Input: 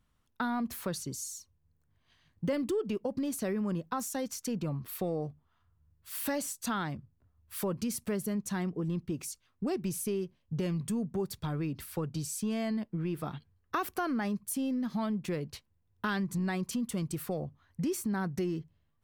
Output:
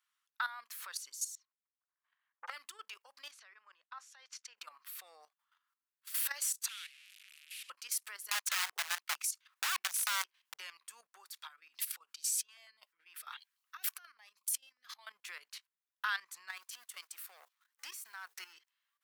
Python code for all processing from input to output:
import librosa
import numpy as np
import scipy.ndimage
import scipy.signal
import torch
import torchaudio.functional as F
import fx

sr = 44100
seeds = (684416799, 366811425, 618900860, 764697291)

y = fx.chain(x, sr, fx.env_lowpass(base_hz=1100.0, full_db=-29.5),
    fx.transient(attack_db=7, sustain_db=-5),
    fx.transformer_sat(knee_hz=770.0), at=(1.35, 2.56))
y = fx.chain(y, sr, fx.level_steps(step_db=14),
    fx.bandpass_edges(low_hz=220.0, high_hz=4000.0), at=(3.31, 4.58))
y = fx.chain(y, sr, fx.delta_mod(bps=64000, step_db=-34.0),
    fx.ladder_highpass(hz=2300.0, resonance_pct=60),
    fx.peak_eq(hz=6300.0, db=-4.0, octaves=0.61), at=(6.68, 7.7))
y = fx.chain(y, sr, fx.overflow_wrap(gain_db=29.0),
    fx.band_squash(depth_pct=70), at=(8.31, 10.54))
y = fx.chain(y, sr, fx.low_shelf(hz=150.0, db=4.0),
    fx.over_compress(threshold_db=-40.0, ratio=-1.0),
    fx.filter_held_notch(hz=10.0, low_hz=450.0, high_hz=1700.0), at=(11.47, 15.07))
y = fx.chain(y, sr, fx.law_mismatch(coded='A'),
    fx.peak_eq(hz=16000.0, db=4.5, octaves=0.44), at=(16.48, 18.53))
y = scipy.signal.sosfilt(scipy.signal.butter(4, 1200.0, 'highpass', fs=sr, output='sos'), y)
y = fx.level_steps(y, sr, step_db=13)
y = y * 10.0 ** (5.5 / 20.0)